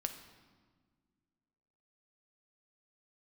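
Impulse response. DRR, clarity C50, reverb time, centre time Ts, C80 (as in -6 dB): 6.5 dB, 9.5 dB, 1.6 s, 17 ms, 11.0 dB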